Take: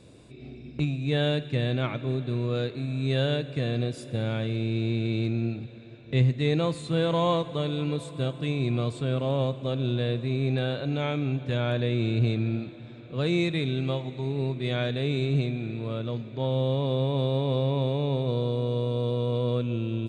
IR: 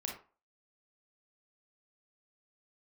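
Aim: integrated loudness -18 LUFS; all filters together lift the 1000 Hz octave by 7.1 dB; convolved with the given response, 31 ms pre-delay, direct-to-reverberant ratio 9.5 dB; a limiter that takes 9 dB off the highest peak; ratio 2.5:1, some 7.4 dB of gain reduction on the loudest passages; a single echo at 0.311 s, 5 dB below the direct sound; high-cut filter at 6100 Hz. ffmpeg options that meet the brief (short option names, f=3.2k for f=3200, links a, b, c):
-filter_complex "[0:a]lowpass=6.1k,equalizer=f=1k:t=o:g=8.5,acompressor=threshold=-28dB:ratio=2.5,alimiter=level_in=2.5dB:limit=-24dB:level=0:latency=1,volume=-2.5dB,aecho=1:1:311:0.562,asplit=2[a][b];[1:a]atrim=start_sample=2205,adelay=31[c];[b][c]afir=irnorm=-1:irlink=0,volume=-10dB[d];[a][d]amix=inputs=2:normalize=0,volume=16dB"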